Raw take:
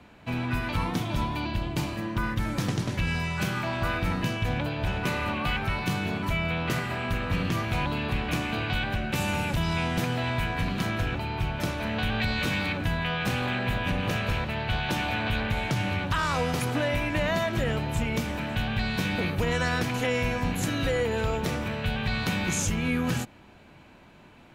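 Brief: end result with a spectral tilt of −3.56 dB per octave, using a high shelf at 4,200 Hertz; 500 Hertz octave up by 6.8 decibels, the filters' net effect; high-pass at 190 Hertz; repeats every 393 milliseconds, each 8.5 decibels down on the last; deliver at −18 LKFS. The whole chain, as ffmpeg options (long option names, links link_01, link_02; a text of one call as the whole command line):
ffmpeg -i in.wav -af "highpass=190,equalizer=frequency=500:width_type=o:gain=8,highshelf=frequency=4200:gain=8.5,aecho=1:1:393|786|1179|1572:0.376|0.143|0.0543|0.0206,volume=7.5dB" out.wav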